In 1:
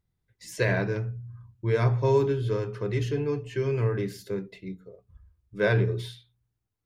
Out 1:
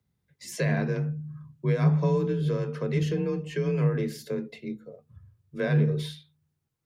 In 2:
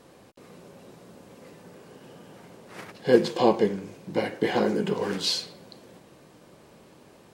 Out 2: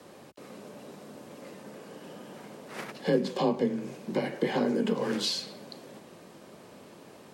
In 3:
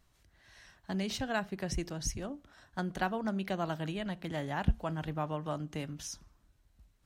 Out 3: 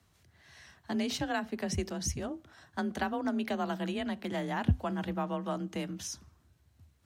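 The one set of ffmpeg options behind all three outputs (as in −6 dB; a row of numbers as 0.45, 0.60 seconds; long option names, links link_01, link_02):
-filter_complex "[0:a]acrossover=split=220[link_01][link_02];[link_02]acompressor=threshold=-32dB:ratio=3[link_03];[link_01][link_03]amix=inputs=2:normalize=0,afreqshift=32,highpass=61,volume=2.5dB"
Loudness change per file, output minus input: 0.0, −4.5, +2.0 LU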